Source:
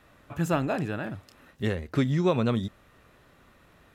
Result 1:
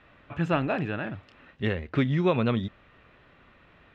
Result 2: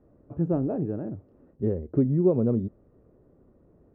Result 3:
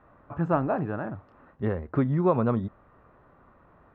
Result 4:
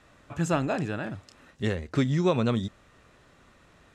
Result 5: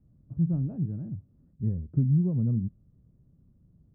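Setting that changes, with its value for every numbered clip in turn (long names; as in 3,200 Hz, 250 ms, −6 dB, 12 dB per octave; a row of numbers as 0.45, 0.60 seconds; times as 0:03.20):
low-pass with resonance, frequency: 2,800, 420, 1,100, 7,600, 160 Hertz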